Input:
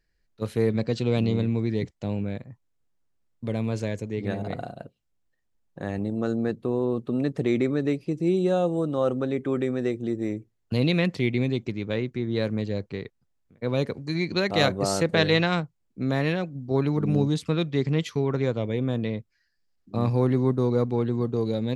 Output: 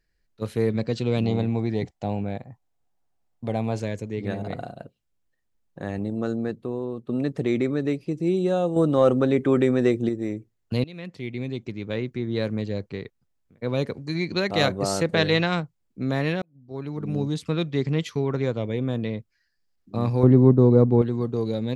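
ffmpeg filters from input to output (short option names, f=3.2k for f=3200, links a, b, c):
-filter_complex "[0:a]asettb=1/sr,asplit=3[a][b][c];[a]atrim=end=1.254[d];[b]atrim=start=1.25:end=3.8,asetpts=PTS-STARTPTS,afade=t=in:d=0.004:c=qsin,afade=t=out:st=2.546:d=0.004:c=qsin,equalizer=f=760:w=3.2:g=13.5[e];[c]atrim=start=3.796[f];[d][e]acrossfade=d=0.004:c1=hsin:c2=qsin[g];[g][f]acrossfade=d=0.004:c1=qsin:c2=hsin,asettb=1/sr,asplit=3[h][i][j];[h]atrim=end=8.764[k];[i]atrim=start=8.76:end=10.09,asetpts=PTS-STARTPTS,afade=t=in:d=0.004:c=qsin,afade=t=out:st=1.326:d=0.004:c=qsin,acontrast=63[l];[j]atrim=start=10.086[m];[k][l]acrossfade=d=0.004:c1=hsin:c2=qsin[n];[n][m]acrossfade=d=0.004:c1=qsin:c2=hsin,asettb=1/sr,asplit=3[o][p][q];[o]atrim=end=20.234[r];[p]atrim=start=20.23:end=21.02,asetpts=PTS-STARTPTS,afade=t=in:d=0.004:c=qsin,afade=t=out:st=0.786:d=0.004:c=qsin,tiltshelf=f=1.2k:g=8.5[s];[q]atrim=start=21.016[t];[r][s]acrossfade=d=0.004:c1=hsin:c2=qsin[u];[u][t]acrossfade=d=0.004:c1=qsin:c2=hsin,asplit=4[v][w][x][y];[v]atrim=end=7.09,asetpts=PTS-STARTPTS,afade=t=out:st=6.21:d=0.88:silence=0.398107[z];[w]atrim=start=7.09:end=10.84,asetpts=PTS-STARTPTS,afade=t=in:d=0.004:c=hsin:silence=0.398107,afade=t=out:st=3.746:d=0.004:c=hsin:silence=0.0668344[aa];[x]atrim=start=10.84:end=16.42,asetpts=PTS-STARTPTS,afade=t=in:d=1.25:silence=0.0668344,afade=t=out:st=5.576:d=0.004:c=hsin[ab];[y]atrim=start=16.42,asetpts=PTS-STARTPTS,afade=t=in:d=1.18[ac];[z][aa][ab][ac]concat=n=4:v=0:a=1"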